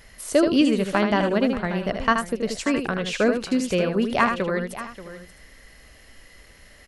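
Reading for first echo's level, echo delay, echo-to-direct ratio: -6.5 dB, 78 ms, -5.5 dB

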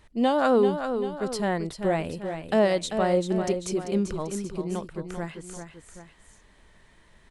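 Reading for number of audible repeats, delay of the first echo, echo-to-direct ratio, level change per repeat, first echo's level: 2, 0.391 s, -7.0 dB, -6.0 dB, -8.0 dB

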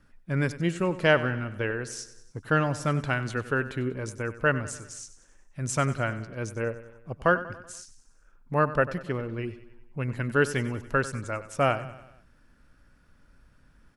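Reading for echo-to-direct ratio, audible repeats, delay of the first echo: -13.5 dB, 4, 95 ms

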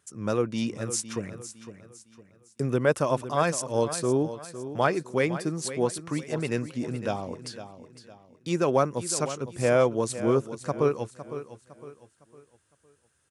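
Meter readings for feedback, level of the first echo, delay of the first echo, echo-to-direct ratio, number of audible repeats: 37%, -12.5 dB, 0.508 s, -12.0 dB, 3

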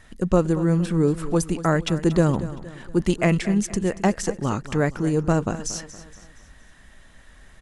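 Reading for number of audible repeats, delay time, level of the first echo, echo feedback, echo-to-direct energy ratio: 3, 0.233 s, -15.0 dB, 45%, -14.0 dB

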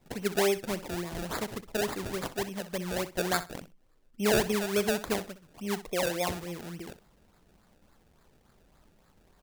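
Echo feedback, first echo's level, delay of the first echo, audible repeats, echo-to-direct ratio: 17%, -14.0 dB, 63 ms, 2, -14.0 dB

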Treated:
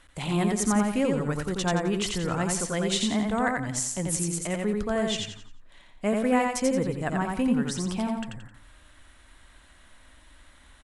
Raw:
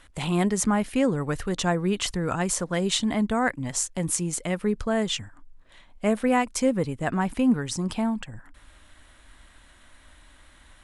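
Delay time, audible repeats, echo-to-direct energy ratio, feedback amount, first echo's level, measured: 87 ms, 4, -2.5 dB, 35%, -3.0 dB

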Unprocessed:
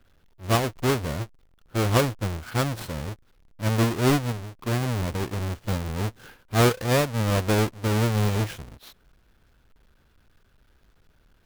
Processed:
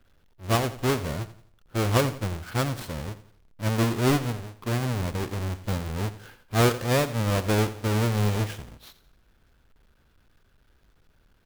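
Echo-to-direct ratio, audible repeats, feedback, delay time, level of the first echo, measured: -14.0 dB, 3, 38%, 86 ms, -14.5 dB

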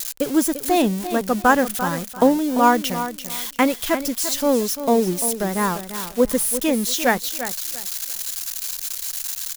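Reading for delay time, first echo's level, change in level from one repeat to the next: 0.344 s, -11.0 dB, -12.5 dB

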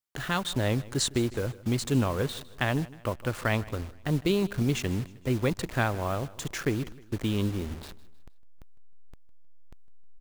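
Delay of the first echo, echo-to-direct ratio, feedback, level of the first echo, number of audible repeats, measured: 0.156 s, -19.0 dB, 43%, -20.0 dB, 3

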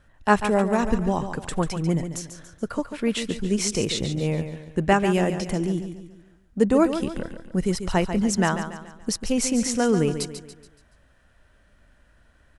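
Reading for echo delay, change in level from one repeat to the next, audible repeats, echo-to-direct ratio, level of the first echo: 0.142 s, -7.5 dB, 4, -8.5 dB, -9.5 dB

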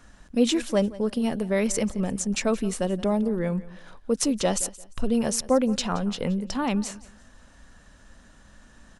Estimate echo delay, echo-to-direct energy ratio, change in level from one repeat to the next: 0.174 s, -18.5 dB, -11.5 dB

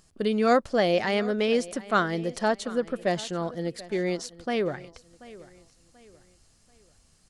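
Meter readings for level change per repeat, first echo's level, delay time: -9.0 dB, -19.0 dB, 0.735 s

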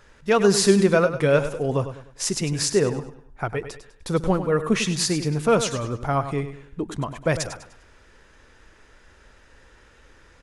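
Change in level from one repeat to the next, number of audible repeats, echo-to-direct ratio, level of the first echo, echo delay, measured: -9.0 dB, 3, -10.5 dB, -11.0 dB, 0.1 s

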